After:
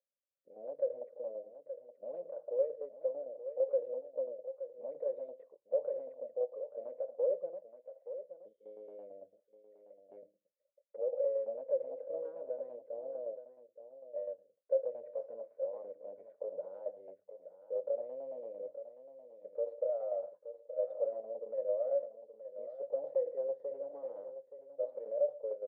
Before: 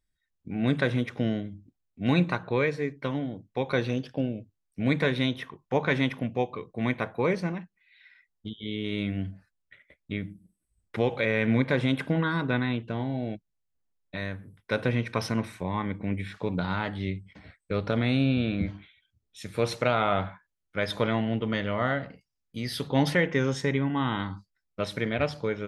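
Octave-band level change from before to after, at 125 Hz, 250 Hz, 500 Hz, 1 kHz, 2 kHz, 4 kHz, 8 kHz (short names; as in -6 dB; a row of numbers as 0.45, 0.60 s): under -40 dB, -35.5 dB, -4.0 dB, -23.0 dB, under -40 dB, under -40 dB, under -30 dB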